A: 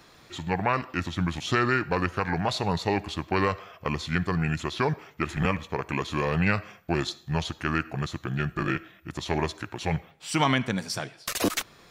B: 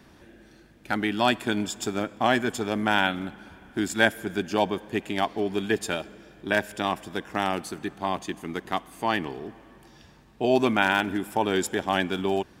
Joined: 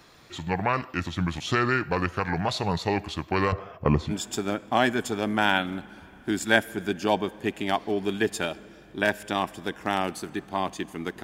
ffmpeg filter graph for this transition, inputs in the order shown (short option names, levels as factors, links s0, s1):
-filter_complex "[0:a]asettb=1/sr,asplit=3[s0][s1][s2];[s0]atrim=end=3.524[s3];[s1]atrim=start=3.52:end=4.13,asetpts=PTS-STARTPTS,afade=t=in:d=0.004:c=qsin,afade=t=out:st=0.606:d=0.004:c=qsin,tiltshelf=f=1500:g=9.5[s4];[s2]atrim=start=4.126[s5];[s3][s4]acrossfade=d=0.004:c1=hsin:c2=qsin[s6];[s6][s5]acrossfade=d=0.004:c1=qsin:c2=hsin,apad=whole_dur=11.23,atrim=end=11.23,atrim=end=4.13,asetpts=PTS-STARTPTS[s7];[1:a]atrim=start=1.56:end=8.72,asetpts=PTS-STARTPTS[s8];[s7][s8]acrossfade=d=0.06:c1=tri:c2=tri"